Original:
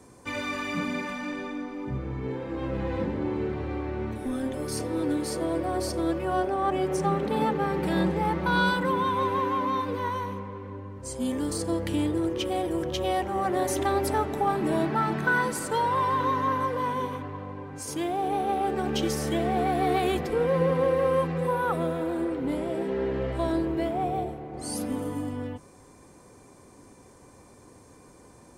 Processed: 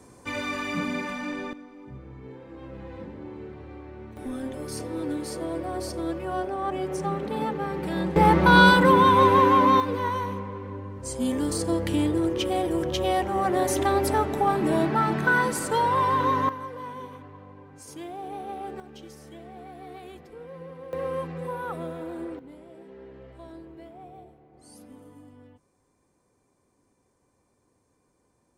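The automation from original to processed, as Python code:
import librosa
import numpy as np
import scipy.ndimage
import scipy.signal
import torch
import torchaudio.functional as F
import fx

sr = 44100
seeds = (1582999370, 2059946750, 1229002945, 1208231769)

y = fx.gain(x, sr, db=fx.steps((0.0, 1.0), (1.53, -10.5), (4.17, -3.0), (8.16, 9.0), (9.8, 2.5), (16.49, -9.0), (18.8, -18.0), (20.93, -6.5), (22.39, -17.5)))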